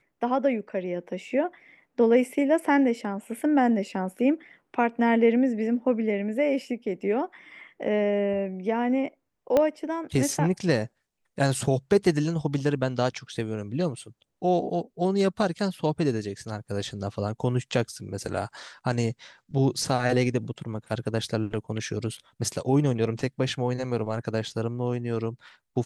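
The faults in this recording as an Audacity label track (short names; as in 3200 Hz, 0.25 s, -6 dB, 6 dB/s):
9.570000	9.570000	pop -10 dBFS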